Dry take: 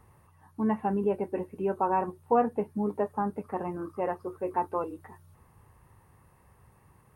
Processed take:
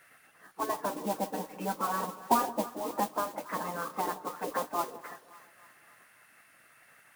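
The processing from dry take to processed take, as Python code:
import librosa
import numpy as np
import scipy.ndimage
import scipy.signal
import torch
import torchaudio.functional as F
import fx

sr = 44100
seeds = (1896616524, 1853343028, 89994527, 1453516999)

p1 = scipy.signal.sosfilt(scipy.signal.butter(4, 240.0, 'highpass', fs=sr, output='sos'), x)
p2 = fx.env_lowpass_down(p1, sr, base_hz=750.0, full_db=-28.0)
p3 = fx.spec_gate(p2, sr, threshold_db=-10, keep='weak')
p4 = fx.peak_eq(p3, sr, hz=1700.0, db=9.0, octaves=2.5)
p5 = fx.mod_noise(p4, sr, seeds[0], snr_db=12)
p6 = p5 + fx.echo_split(p5, sr, split_hz=960.0, low_ms=171, high_ms=282, feedback_pct=52, wet_db=-15.5, dry=0)
y = p6 * librosa.db_to_amplitude(5.5)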